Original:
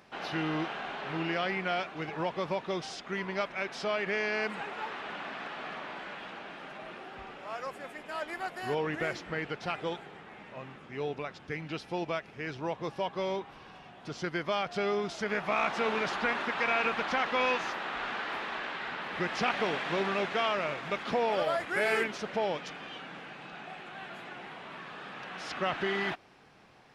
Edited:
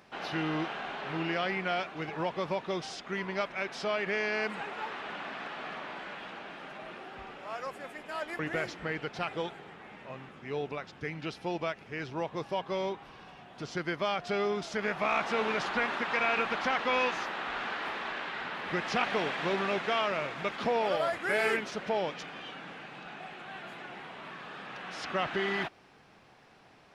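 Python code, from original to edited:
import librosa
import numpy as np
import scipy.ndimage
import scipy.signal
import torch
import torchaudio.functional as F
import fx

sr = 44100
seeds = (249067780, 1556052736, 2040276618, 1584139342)

y = fx.edit(x, sr, fx.cut(start_s=8.39, length_s=0.47), tone=tone)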